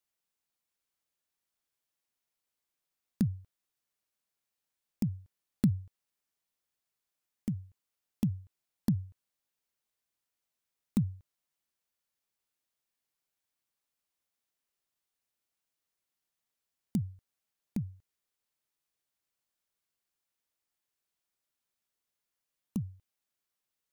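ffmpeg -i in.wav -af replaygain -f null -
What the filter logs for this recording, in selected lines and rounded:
track_gain = +29.8 dB
track_peak = 0.141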